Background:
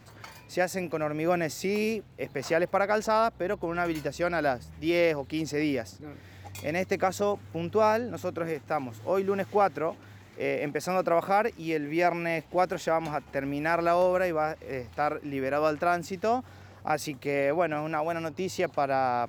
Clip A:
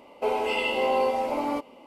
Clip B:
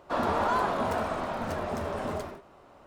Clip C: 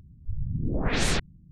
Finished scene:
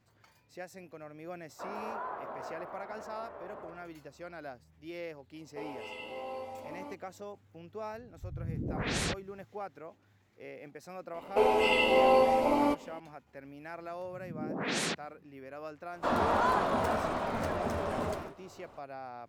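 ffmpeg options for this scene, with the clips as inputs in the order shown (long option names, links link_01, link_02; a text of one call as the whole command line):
ffmpeg -i bed.wav -i cue0.wav -i cue1.wav -i cue2.wav -filter_complex "[2:a]asplit=2[link_01][link_02];[1:a]asplit=2[link_03][link_04];[3:a]asplit=2[link_05][link_06];[0:a]volume=-17.5dB[link_07];[link_01]acrossover=split=350 2100:gain=0.141 1 0.0794[link_08][link_09][link_10];[link_08][link_09][link_10]amix=inputs=3:normalize=0[link_11];[link_05]highpass=66[link_12];[link_04]lowshelf=frequency=160:gain=7.5[link_13];[link_06]highpass=frequency=180:width=0.5412,highpass=frequency=180:width=1.3066[link_14];[link_11]atrim=end=2.86,asetpts=PTS-STARTPTS,volume=-11.5dB,afade=type=in:duration=0.004:curve=hsin,afade=type=out:start_time=2.856:duration=0.004:curve=hsin,adelay=1490[link_15];[link_03]atrim=end=1.86,asetpts=PTS-STARTPTS,volume=-17dB,afade=type=in:duration=0.004:curve=hsin,afade=type=out:start_time=1.856:duration=0.004:curve=hsin,adelay=5340[link_16];[link_12]atrim=end=1.51,asetpts=PTS-STARTPTS,volume=-6dB,afade=type=in:duration=0.004:curve=hsin,afade=type=out:start_time=1.506:duration=0.004:curve=hsin,adelay=350154S[link_17];[link_13]atrim=end=1.86,asetpts=PTS-STARTPTS,afade=type=in:duration=0.004:curve=hsin,afade=type=out:start_time=1.856:duration=0.004:curve=hsin,adelay=491274S[link_18];[link_14]atrim=end=1.51,asetpts=PTS-STARTPTS,volume=-5dB,afade=type=in:duration=0.004:curve=hsin,afade=type=out:start_time=1.506:duration=0.004:curve=hsin,adelay=13750[link_19];[link_02]atrim=end=2.86,asetpts=PTS-STARTPTS,volume=-1dB,afade=type=in:duration=0.004:curve=hsin,afade=type=out:start_time=2.856:duration=0.004:curve=hsin,adelay=15930[link_20];[link_07][link_15][link_16][link_17][link_18][link_19][link_20]amix=inputs=7:normalize=0" out.wav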